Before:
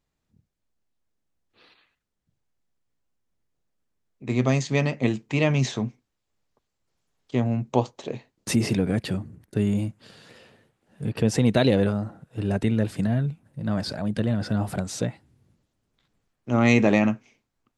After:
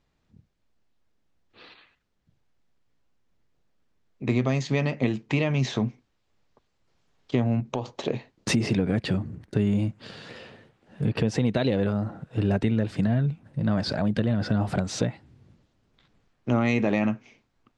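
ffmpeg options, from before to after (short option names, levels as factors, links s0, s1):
-filter_complex "[0:a]asettb=1/sr,asplit=3[s0][s1][s2];[s0]atrim=end=7.604[s3];[s1]atrim=start=7.6:end=8.05,asetpts=PTS-STARTPTS,afade=t=in:d=0.004:c=qsin,afade=t=out:st=0.446:d=0.004:c=qsin,acompressor=threshold=0.0282:ratio=4:attack=3.2:release=140:knee=1:detection=peak[s4];[s2]atrim=start=8.046[s5];[s3][s4]acrossfade=d=0.004:c1=hsin:c2=qsin[s6];[s6][s5]acrossfade=d=0.004:c1=qsin:c2=hsin,lowpass=5100,alimiter=limit=0.211:level=0:latency=1:release=483,acompressor=threshold=0.0251:ratio=2,volume=2.37"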